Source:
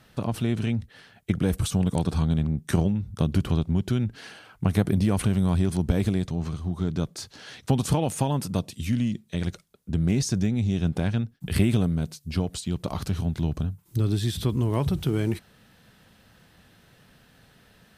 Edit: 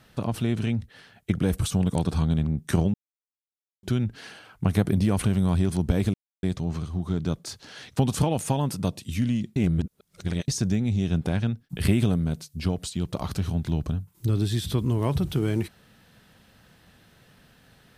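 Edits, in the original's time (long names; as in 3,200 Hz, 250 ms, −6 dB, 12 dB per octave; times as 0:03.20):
0:02.94–0:03.83: silence
0:06.14: splice in silence 0.29 s
0:09.27–0:10.19: reverse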